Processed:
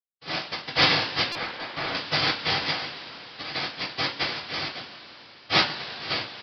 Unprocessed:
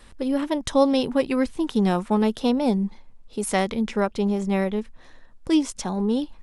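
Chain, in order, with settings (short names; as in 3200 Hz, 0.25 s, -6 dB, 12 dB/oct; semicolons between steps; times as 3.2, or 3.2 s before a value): per-bin expansion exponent 3; HPF 450 Hz 6 dB/oct; gate with hold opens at -51 dBFS; in parallel at -1.5 dB: limiter -22 dBFS, peak gain reduction 10.5 dB; on the sum: rotary speaker horn 0.75 Hz, later 5 Hz, at 2; noise vocoder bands 1; two-slope reverb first 0.26 s, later 4.4 s, from -21 dB, DRR -6.5 dB; 1.35–1.95 overdrive pedal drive 11 dB, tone 1200 Hz, clips at -13.5 dBFS; downsampling 11025 Hz; stuck buffer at 1.32, samples 128, times 10; gain -3 dB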